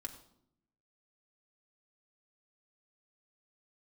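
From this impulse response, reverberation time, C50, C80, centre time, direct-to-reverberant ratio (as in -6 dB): 0.70 s, 11.0 dB, 12.5 dB, 12 ms, 2.0 dB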